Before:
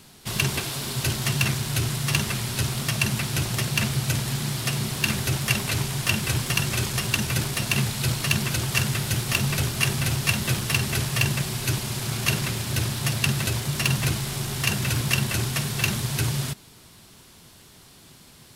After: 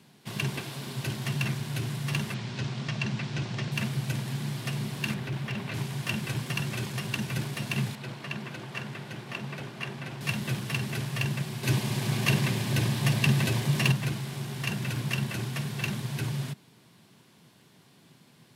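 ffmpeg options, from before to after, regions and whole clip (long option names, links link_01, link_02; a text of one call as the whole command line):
ffmpeg -i in.wav -filter_complex "[0:a]asettb=1/sr,asplit=3[link_01][link_02][link_03];[link_01]atrim=end=2.344[link_04];[link_02]atrim=start=2.34:end=3.72,asetpts=PTS-STARTPTS,afade=type=in:duration=0.004:curve=qsin,afade=type=out:start_time=1.376:duration=0.004:curve=qsin,lowpass=frequency=6500:width=0.5412,lowpass=frequency=6500:width=1.3066,asoftclip=type=hard:threshold=-11.5dB[link_05];[link_03]atrim=start=3.716[link_06];[link_04][link_05]acrossfade=duration=0.004:curve1=hsin:curve2=qsin[link_07];[link_07][link_06]acrossfade=duration=0.004:curve1=qsin:curve2=hsin,asettb=1/sr,asplit=3[link_08][link_09][link_10];[link_08]atrim=end=5.144[link_11];[link_09]atrim=start=5.14:end=5.74,asetpts=PTS-STARTPTS,afade=type=in:duration=0.004:curve=qsin,afade=type=out:start_time=0.596:duration=0.004:curve=qsin,acrossover=split=4000[link_12][link_13];[link_13]acompressor=threshold=-43dB:ratio=4:attack=1:release=60[link_14];[link_12][link_14]amix=inputs=2:normalize=0,asoftclip=type=hard:threshold=-22.5dB[link_15];[link_10]atrim=start=5.736[link_16];[link_11][link_15]acrossfade=duration=0.004:curve1=hsin:curve2=qsin[link_17];[link_17][link_16]acrossfade=duration=0.004:curve1=qsin:curve2=hsin,asettb=1/sr,asplit=3[link_18][link_19][link_20];[link_18]atrim=end=7.954[link_21];[link_19]atrim=start=7.95:end=10.21,asetpts=PTS-STARTPTS,afade=type=in:duration=0.004:curve=qsin,afade=type=out:start_time=2.256:duration=0.004:curve=qsin,lowpass=frequency=1900:poles=1,equalizer=frequency=74:width=0.52:gain=-14[link_22];[link_20]atrim=start=10.206[link_23];[link_21][link_22]acrossfade=duration=0.004:curve1=hsin:curve2=qsin[link_24];[link_24][link_23]acrossfade=duration=0.004:curve1=qsin:curve2=hsin,asettb=1/sr,asplit=3[link_25][link_26][link_27];[link_25]atrim=end=11.634[link_28];[link_26]atrim=start=11.63:end=13.92,asetpts=PTS-STARTPTS,afade=type=in:duration=0.004:curve=qsin,afade=type=out:start_time=2.286:duration=0.004:curve=qsin,bandreject=frequency=1400:width=12,acontrast=66[link_29];[link_27]atrim=start=13.916[link_30];[link_28][link_29]acrossfade=duration=0.004:curve1=hsin:curve2=qsin[link_31];[link_31][link_30]acrossfade=duration=0.004:curve1=qsin:curve2=hsin,highpass=frequency=130:width=0.5412,highpass=frequency=130:width=1.3066,bass=frequency=250:gain=5,treble=frequency=4000:gain=-8,bandreject=frequency=1300:width=13,volume=-6.5dB" out.wav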